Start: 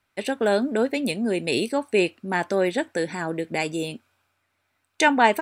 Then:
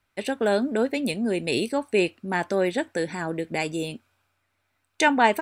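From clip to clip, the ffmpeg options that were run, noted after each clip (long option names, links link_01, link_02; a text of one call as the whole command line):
ffmpeg -i in.wav -af "lowshelf=frequency=66:gain=10.5,volume=-1.5dB" out.wav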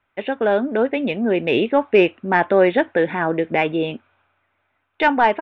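ffmpeg -i in.wav -filter_complex "[0:a]aresample=8000,aresample=44100,asplit=2[link_01][link_02];[link_02]highpass=frequency=720:poles=1,volume=10dB,asoftclip=type=tanh:threshold=-5dB[link_03];[link_01][link_03]amix=inputs=2:normalize=0,lowpass=frequency=1200:poles=1,volume=-6dB,dynaudnorm=framelen=260:gausssize=9:maxgain=5dB,volume=3.5dB" out.wav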